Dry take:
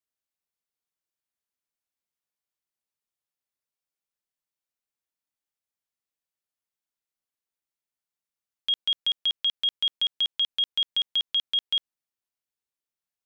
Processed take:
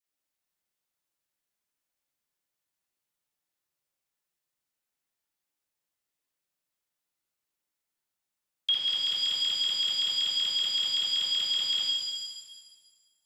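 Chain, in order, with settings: phase dispersion lows, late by 69 ms, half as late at 660 Hz; pitch-shifted reverb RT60 1.5 s, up +7 st, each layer -8 dB, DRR -3 dB

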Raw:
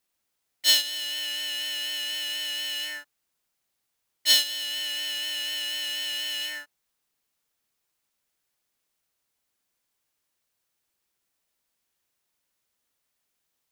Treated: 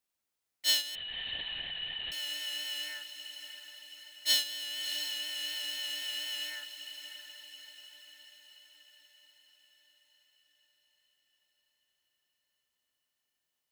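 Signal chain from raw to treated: on a send: echo that smears into a reverb 645 ms, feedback 57%, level -9.5 dB; 0.95–2.12 s: on the sum: LPC vocoder at 8 kHz whisper; trim -7.5 dB

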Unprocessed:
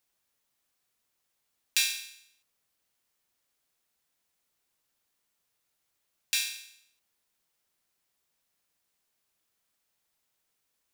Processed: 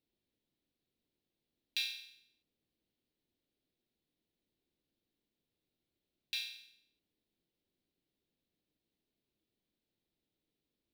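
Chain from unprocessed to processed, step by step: FFT filter 120 Hz 0 dB, 320 Hz +5 dB, 1.2 kHz -21 dB, 2.1 kHz -14 dB, 3.9 kHz -8 dB, 7.2 kHz -28 dB, 14 kHz -20 dB; trim +2.5 dB

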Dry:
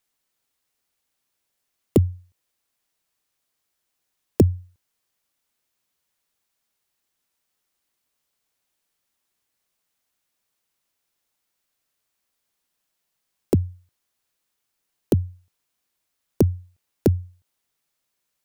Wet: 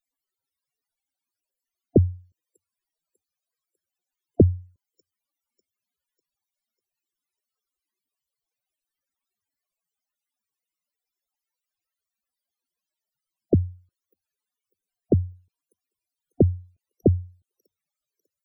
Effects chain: feedback echo behind a high-pass 597 ms, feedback 47%, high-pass 2.1 kHz, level -21 dB; loudest bins only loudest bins 32

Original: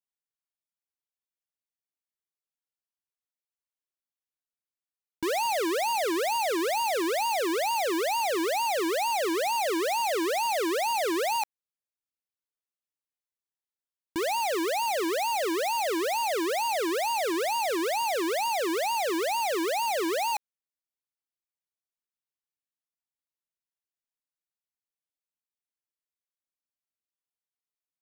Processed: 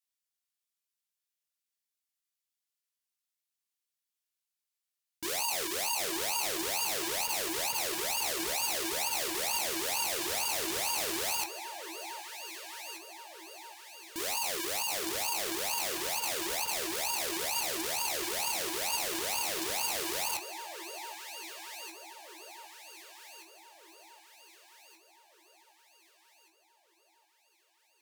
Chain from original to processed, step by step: tilt shelf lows -9 dB, about 1.2 kHz; on a send: echo whose repeats swap between lows and highs 764 ms, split 1.1 kHz, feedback 68%, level -12.5 dB; on the sum: chorus 0.23 Hz, delay 18 ms, depth 6.7 ms; Chebyshev shaper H 7 -7 dB, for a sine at -13.5 dBFS; trim -5 dB

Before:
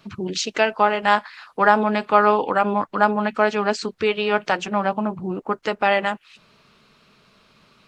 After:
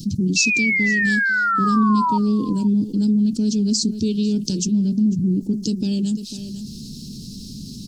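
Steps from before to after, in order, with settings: elliptic band-stop 260–5200 Hz, stop band 50 dB; painted sound fall, 0.36–2.18 s, 920–2700 Hz -31 dBFS; on a send: delay 498 ms -21 dB; on the sum: level flattener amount 50%; trim +7.5 dB

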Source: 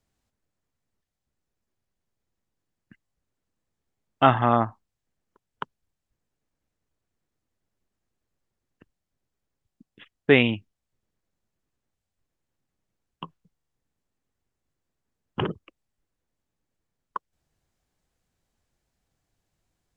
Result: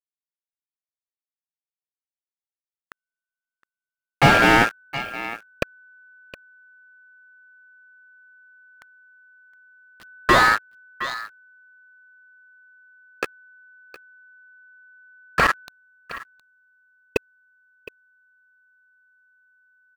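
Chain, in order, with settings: send-on-delta sampling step -37 dBFS; waveshaping leveller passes 3; ring modulator 1.5 kHz; on a send: delay 715 ms -20.5 dB; on the sum: slew-rate limiter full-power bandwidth 190 Hz; trim +5 dB

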